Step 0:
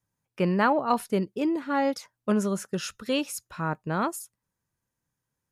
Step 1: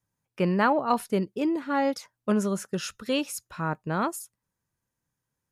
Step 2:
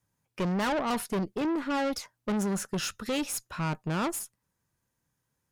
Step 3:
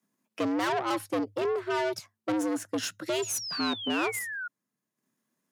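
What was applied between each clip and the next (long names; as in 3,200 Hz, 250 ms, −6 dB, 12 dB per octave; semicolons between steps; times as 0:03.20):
no processing that can be heard
tube saturation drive 31 dB, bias 0.4; level +5 dB
sound drawn into the spectrogram fall, 0:03.22–0:04.48, 1,300–7,100 Hz −35 dBFS; transient designer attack +1 dB, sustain −7 dB; frequency shifter +100 Hz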